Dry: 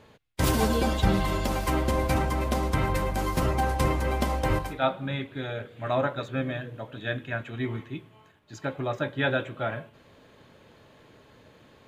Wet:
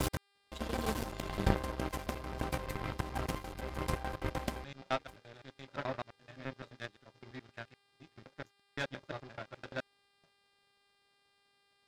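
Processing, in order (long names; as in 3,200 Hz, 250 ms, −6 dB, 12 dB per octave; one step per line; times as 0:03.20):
slices reordered back to front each 86 ms, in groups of 6
hum with harmonics 400 Hz, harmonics 13, −44 dBFS −3 dB per octave
power curve on the samples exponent 2
level −1 dB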